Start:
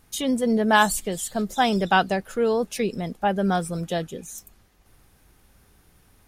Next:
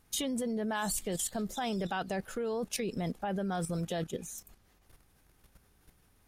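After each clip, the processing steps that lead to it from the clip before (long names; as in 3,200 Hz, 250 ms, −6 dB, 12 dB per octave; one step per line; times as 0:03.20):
brickwall limiter −17.5 dBFS, peak gain reduction 11.5 dB
output level in coarse steps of 11 dB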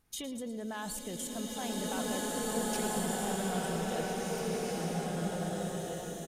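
repeating echo 112 ms, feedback 55%, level −13 dB
slow-attack reverb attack 2,000 ms, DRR −6.5 dB
level −6.5 dB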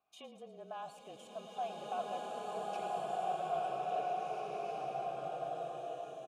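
frequency shifter −31 Hz
formant filter a
level +6.5 dB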